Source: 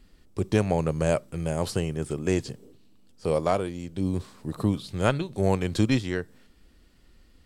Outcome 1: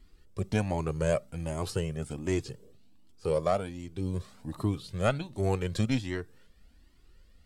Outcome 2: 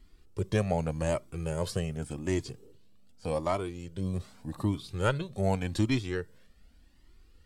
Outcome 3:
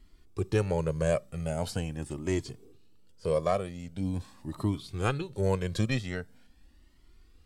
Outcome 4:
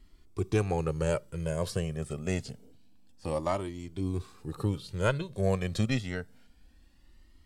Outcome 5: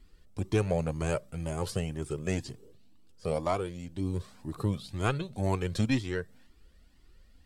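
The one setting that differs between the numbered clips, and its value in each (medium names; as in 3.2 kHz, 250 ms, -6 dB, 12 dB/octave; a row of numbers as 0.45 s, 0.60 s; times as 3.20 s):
Shepard-style flanger, rate: 1.3 Hz, 0.85 Hz, 0.43 Hz, 0.27 Hz, 2 Hz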